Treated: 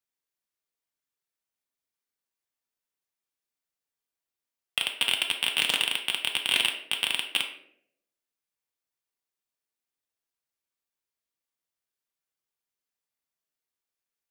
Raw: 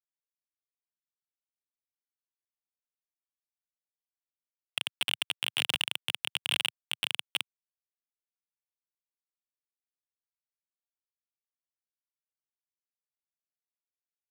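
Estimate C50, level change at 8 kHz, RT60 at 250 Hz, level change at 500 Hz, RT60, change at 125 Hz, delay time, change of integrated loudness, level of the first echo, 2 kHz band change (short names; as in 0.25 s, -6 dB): 8.0 dB, +5.5 dB, 0.80 s, +6.5 dB, 0.70 s, +4.0 dB, none, +5.5 dB, none, +6.0 dB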